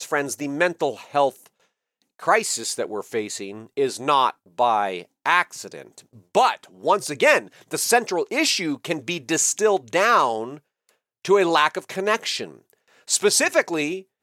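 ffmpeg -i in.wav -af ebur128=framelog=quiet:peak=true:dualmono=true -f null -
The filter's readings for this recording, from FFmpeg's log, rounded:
Integrated loudness:
  I:         -18.6 LUFS
  Threshold: -29.3 LUFS
Loudness range:
  LRA:         3.5 LU
  Threshold: -39.2 LUFS
  LRA low:   -21.4 LUFS
  LRA high:  -18.0 LUFS
True peak:
  Peak:       -3.6 dBFS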